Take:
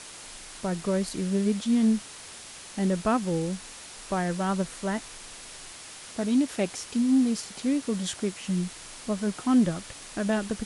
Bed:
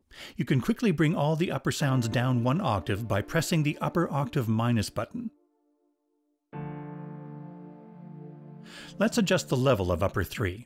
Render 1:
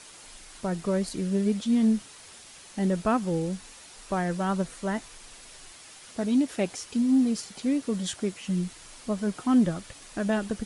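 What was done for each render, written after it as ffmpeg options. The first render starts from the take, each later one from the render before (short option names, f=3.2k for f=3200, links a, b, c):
-af "afftdn=nr=6:nf=-44"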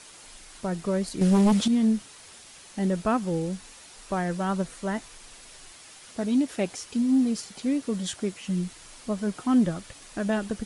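-filter_complex "[0:a]asettb=1/sr,asplit=3[a][b][c];[a]atrim=end=1.214[d];[b]atrim=start=1.21:end=1.68,asetpts=PTS-STARTPTS,afade=t=in:d=0.004:c=qsin,afade=t=out:st=0.466:d=0.004:c=qsin,aeval=exprs='0.168*sin(PI/2*2*val(0)/0.168)':c=same[e];[c]atrim=start=1.676[f];[d][e]acrossfade=d=0.004:c1=hsin:c2=qsin[g];[g][f]acrossfade=d=0.004:c1=qsin:c2=hsin"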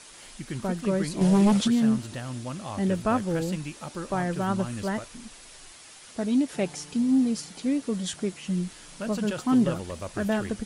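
-filter_complex "[1:a]volume=-9.5dB[a];[0:a][a]amix=inputs=2:normalize=0"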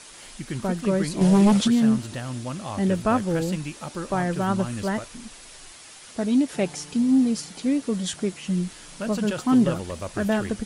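-af "volume=3dB"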